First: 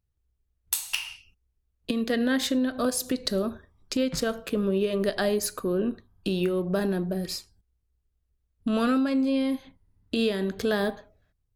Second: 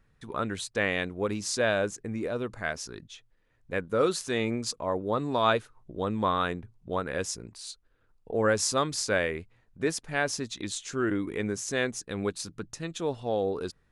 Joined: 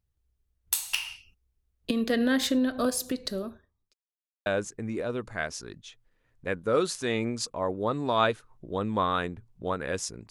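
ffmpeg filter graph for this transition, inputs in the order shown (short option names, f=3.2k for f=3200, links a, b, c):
-filter_complex "[0:a]apad=whole_dur=10.3,atrim=end=10.3,asplit=2[a][b];[a]atrim=end=3.94,asetpts=PTS-STARTPTS,afade=t=out:st=2.76:d=1.18[c];[b]atrim=start=3.94:end=4.46,asetpts=PTS-STARTPTS,volume=0[d];[1:a]atrim=start=1.72:end=7.56,asetpts=PTS-STARTPTS,afade=t=in:d=0.004:c=hsin[e];[c][d][e]concat=n=3:v=0:a=1"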